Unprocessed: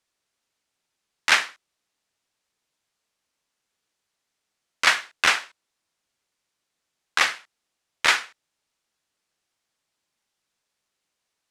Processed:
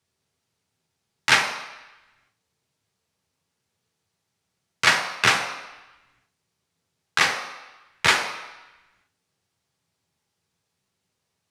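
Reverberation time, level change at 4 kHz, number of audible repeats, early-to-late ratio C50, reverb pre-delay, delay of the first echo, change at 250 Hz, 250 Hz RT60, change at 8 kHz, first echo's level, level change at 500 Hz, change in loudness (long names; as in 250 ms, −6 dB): 1.0 s, +1.0 dB, no echo audible, 7.0 dB, 3 ms, no echo audible, +7.5 dB, 0.80 s, +1.0 dB, no echo audible, +5.0 dB, +0.5 dB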